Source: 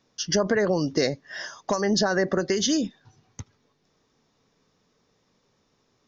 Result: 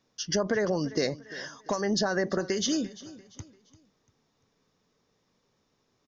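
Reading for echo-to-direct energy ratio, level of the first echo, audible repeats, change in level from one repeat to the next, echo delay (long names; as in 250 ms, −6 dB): −17.5 dB, −18.0 dB, 2, −8.5 dB, 344 ms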